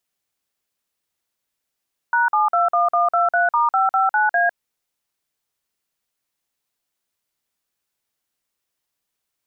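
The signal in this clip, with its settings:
touch tones "#721123*559A", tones 153 ms, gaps 48 ms, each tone −17 dBFS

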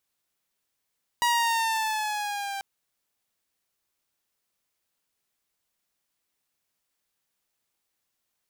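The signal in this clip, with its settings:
pitch glide with a swell saw, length 1.39 s, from 961 Hz, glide −3.5 semitones, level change −11 dB, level −17.5 dB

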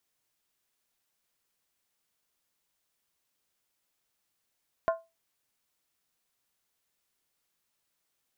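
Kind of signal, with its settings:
struck skin, lowest mode 661 Hz, decay 0.24 s, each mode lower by 6 dB, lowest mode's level −20 dB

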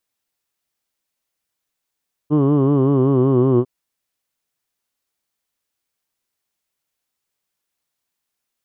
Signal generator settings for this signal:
vowel from formants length 1.35 s, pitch 145 Hz, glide −2.5 semitones, F1 350 Hz, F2 1,100 Hz, F3 3,000 Hz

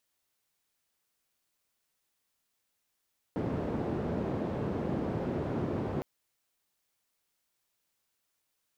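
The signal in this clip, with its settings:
band-limited noise 86–370 Hz, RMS −33 dBFS 2.66 s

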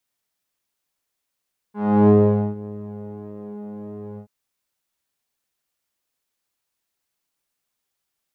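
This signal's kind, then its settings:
subtractive patch with pulse-width modulation G#3, oscillator 2 saw, interval −12 semitones, detune 9 cents, oscillator 2 level −2 dB, sub −8 dB, filter lowpass, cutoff 550 Hz, Q 1.4, filter envelope 1 octave, filter decay 0.42 s, filter sustain 5%, attack 348 ms, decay 0.46 s, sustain −23 dB, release 0.09 s, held 2.44 s, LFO 1.7 Hz, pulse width 32%, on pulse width 5%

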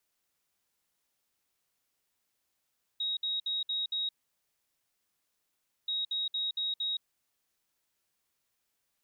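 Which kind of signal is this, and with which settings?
beeps in groups sine 3,790 Hz, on 0.17 s, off 0.06 s, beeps 5, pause 1.79 s, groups 2, −29.5 dBFS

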